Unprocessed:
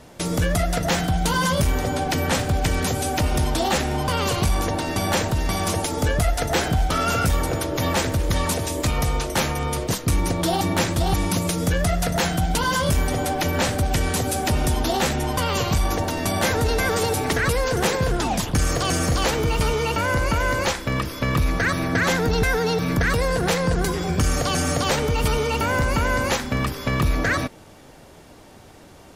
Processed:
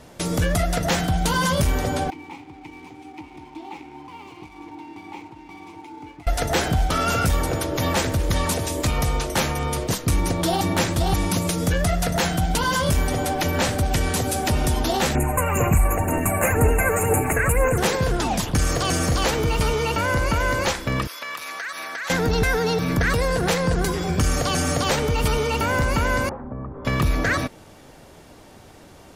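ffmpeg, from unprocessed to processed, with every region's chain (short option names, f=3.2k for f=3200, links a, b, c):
-filter_complex "[0:a]asettb=1/sr,asplit=3[a][b][c];[a]atrim=end=2.104[d];[b]atrim=start=2.1:end=6.27,asetpts=PTS-STARTPTS,afade=t=in:d=0.004:c=qsin,afade=t=out:st=4.166:d=0.004:c=qsin,asplit=3[e][f][g];[e]bandpass=f=300:t=q:w=8,volume=0dB[h];[f]bandpass=f=870:t=q:w=8,volume=-6dB[i];[g]bandpass=f=2.24k:t=q:w=8,volume=-9dB[j];[h][i][j]amix=inputs=3:normalize=0,equalizer=f=230:t=o:w=0.52:g=-11,aeval=exprs='sgn(val(0))*max(abs(val(0))-0.00237,0)':c=same[k];[c]atrim=start=6.266[l];[d][k]acrossfade=d=0.004:c1=hsin:c2=qsin[m];[m][l]acrossfade=d=0.004:c1=qsin:c2=hsin,asettb=1/sr,asplit=3[n][o][p];[n]atrim=end=15.154[q];[o]atrim=start=15.15:end=17.78,asetpts=PTS-STARTPTS,afade=t=in:d=0.004:c=qsin,afade=t=out:st=2.626:d=0.004:c=qsin,asuperstop=centerf=4300:order=20:qfactor=1.1,highshelf=f=7k:g=6.5,aphaser=in_gain=1:out_gain=1:delay=1.9:decay=0.41:speed=2:type=sinusoidal[r];[p]atrim=start=17.776[s];[q][r]acrossfade=d=0.004:c1=hsin:c2=qsin[t];[t][s]acrossfade=d=0.004:c1=qsin:c2=hsin,asettb=1/sr,asplit=3[u][v][w];[u]atrim=end=21.074[x];[v]atrim=start=21.07:end=22.1,asetpts=PTS-STARTPTS,afade=t=in:d=0.004:c=qsin,afade=t=out:st=1.026:d=0.004:c=qsin,highpass=1k,acompressor=threshold=-27dB:ratio=6:attack=3.2:release=140:knee=1:detection=peak[y];[w]atrim=start=22.096[z];[x][y]acrossfade=d=0.004:c1=hsin:c2=qsin[aa];[aa][z]acrossfade=d=0.004:c1=qsin:c2=hsin,asettb=1/sr,asplit=3[ab][ac][ad];[ab]atrim=end=26.294[ae];[ac]atrim=start=26.29:end=26.85,asetpts=PTS-STARTPTS,afade=t=in:d=0.004:c=qsin,afade=t=out:st=0.556:d=0.004:c=qsin,lowpass=f=1.1k:w=0.5412,lowpass=f=1.1k:w=1.3066,acompressor=threshold=-31dB:ratio=3:attack=3.2:release=140:knee=1:detection=peak[af];[ad]atrim=start=26.846[ag];[ae][af]acrossfade=d=0.004:c1=hsin:c2=qsin[ah];[ah][ag]acrossfade=d=0.004:c1=qsin:c2=hsin"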